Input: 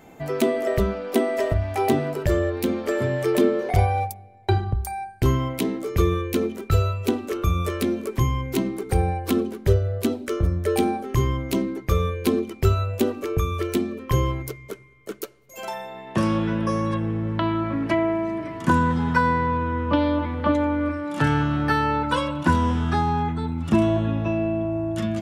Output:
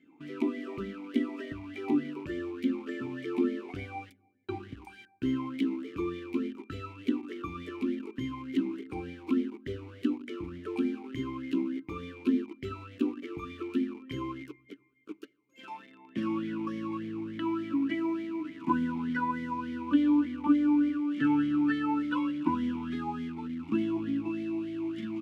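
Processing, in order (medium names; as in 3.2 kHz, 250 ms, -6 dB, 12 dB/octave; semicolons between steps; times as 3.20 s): in parallel at -4.5 dB: bit crusher 5-bit; on the sum: talking filter i-u 3.4 Hz; trim -2.5 dB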